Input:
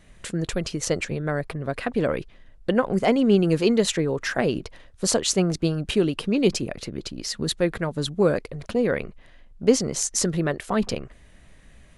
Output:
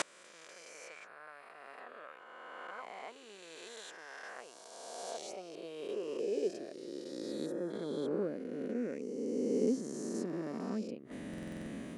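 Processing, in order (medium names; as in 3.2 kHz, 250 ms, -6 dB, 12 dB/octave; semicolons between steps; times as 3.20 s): reverse spectral sustain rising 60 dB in 2.99 s; tilt shelf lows +6.5 dB, about 680 Hz; inverted gate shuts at -15 dBFS, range -30 dB; high-pass sweep 1.1 kHz -> 260 Hz, 4.33–7.59 s; time-frequency box 7.46–7.70 s, 1.9–4.9 kHz -13 dB; buffer glitch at 11.29 s, samples 2048, times 7; trim +5.5 dB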